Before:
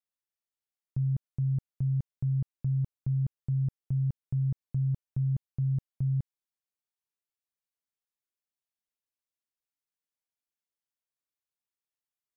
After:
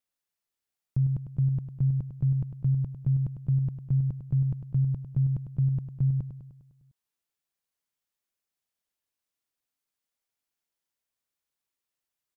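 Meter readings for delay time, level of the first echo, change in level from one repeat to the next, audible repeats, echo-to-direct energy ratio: 101 ms, −8.5 dB, −5.0 dB, 6, −7.0 dB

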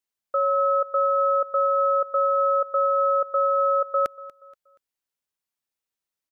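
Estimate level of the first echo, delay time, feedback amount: −20.0 dB, 238 ms, 39%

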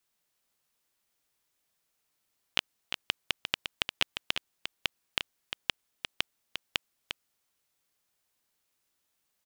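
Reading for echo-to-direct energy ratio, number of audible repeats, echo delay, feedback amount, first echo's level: −7.5 dB, 1, 351 ms, repeats not evenly spaced, −7.5 dB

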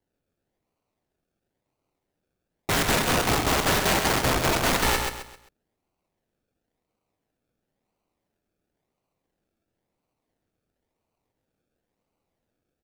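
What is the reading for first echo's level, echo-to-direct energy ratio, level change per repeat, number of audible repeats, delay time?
−5.0 dB, −4.5 dB, −9.5 dB, 4, 132 ms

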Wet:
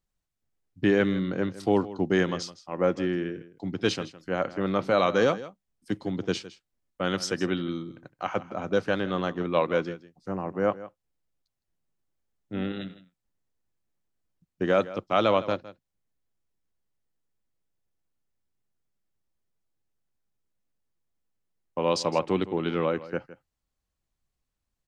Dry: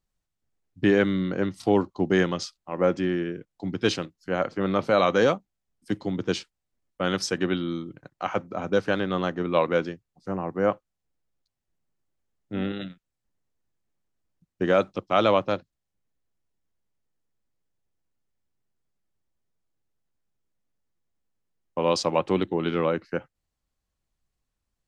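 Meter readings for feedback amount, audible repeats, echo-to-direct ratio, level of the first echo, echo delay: repeats not evenly spaced, 1, −16.5 dB, −16.5 dB, 161 ms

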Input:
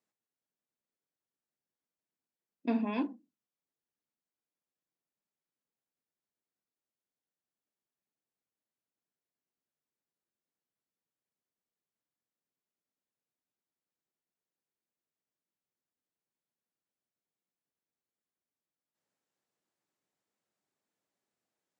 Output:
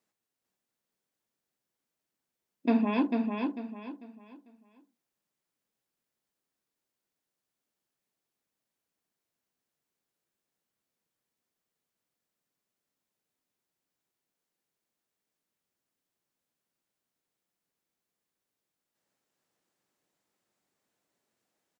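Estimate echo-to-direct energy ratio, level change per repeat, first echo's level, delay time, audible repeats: −4.0 dB, −10.0 dB, −4.5 dB, 446 ms, 3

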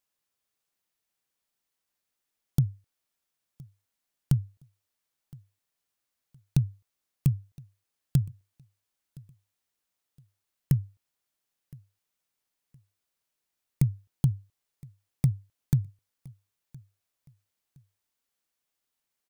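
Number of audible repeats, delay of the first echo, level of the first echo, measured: 2, 1,016 ms, −24.0 dB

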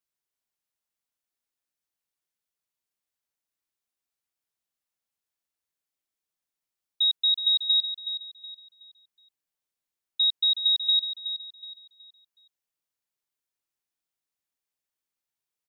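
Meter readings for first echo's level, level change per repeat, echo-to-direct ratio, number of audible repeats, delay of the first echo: −10.0 dB, −9.5 dB, −9.5 dB, 3, 371 ms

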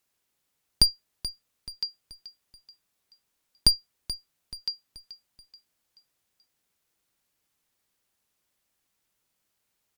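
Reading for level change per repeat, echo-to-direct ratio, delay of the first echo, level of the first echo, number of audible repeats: −7.0 dB, −13.5 dB, 431 ms, −14.5 dB, 3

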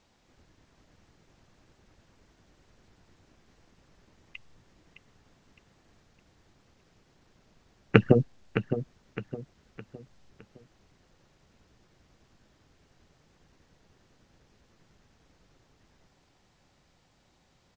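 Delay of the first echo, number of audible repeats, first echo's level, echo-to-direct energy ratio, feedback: 612 ms, 3, −10.0 dB, −9.5 dB, 38%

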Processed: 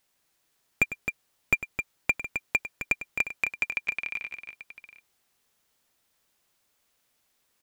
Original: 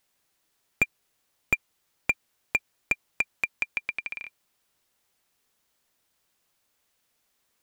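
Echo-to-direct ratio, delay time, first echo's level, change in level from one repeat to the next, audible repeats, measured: −6.0 dB, 101 ms, −14.0 dB, repeats not evenly spaced, 3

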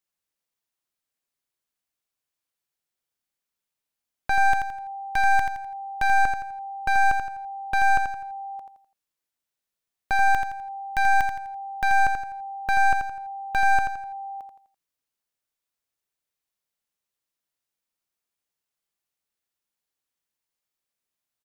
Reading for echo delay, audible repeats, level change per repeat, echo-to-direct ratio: 84 ms, 4, −8.5 dB, −6.0 dB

